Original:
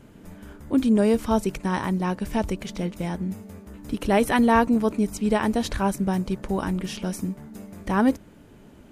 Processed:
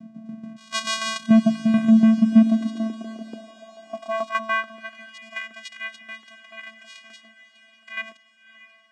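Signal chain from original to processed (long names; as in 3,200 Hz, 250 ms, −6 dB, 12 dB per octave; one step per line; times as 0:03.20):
mains-hum notches 50/100/150/200/250 Hz
0:00.56–0:01.26: voice inversion scrambler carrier 3,200 Hz
0:03.01–0:03.47: compressor whose output falls as the input rises −31 dBFS, ratio −0.5
channel vocoder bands 4, square 222 Hz
shaped tremolo saw down 6.9 Hz, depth 60%
feedback delay with all-pass diffusion 612 ms, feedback 64%, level −16 dB
high-pass filter sweep 140 Hz → 2,000 Hz, 0:01.82–0:05.09
level +6.5 dB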